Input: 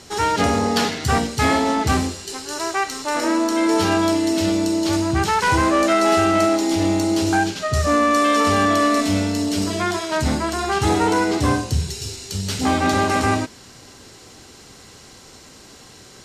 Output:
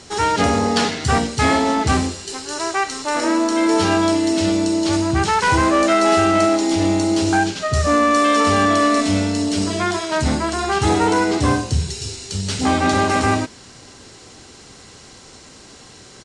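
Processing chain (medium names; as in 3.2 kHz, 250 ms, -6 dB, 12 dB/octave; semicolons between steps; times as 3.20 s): resampled via 22.05 kHz; trim +1.5 dB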